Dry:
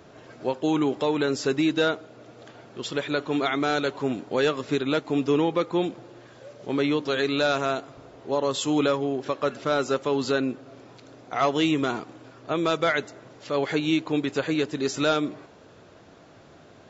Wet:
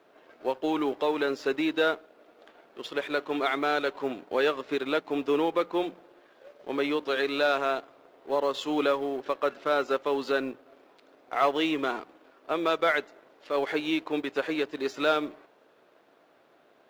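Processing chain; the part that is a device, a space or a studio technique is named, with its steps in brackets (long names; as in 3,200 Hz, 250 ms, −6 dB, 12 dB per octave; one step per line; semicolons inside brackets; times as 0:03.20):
phone line with mismatched companding (band-pass filter 360–3,500 Hz; mu-law and A-law mismatch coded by A)
mains-hum notches 60/120/180 Hz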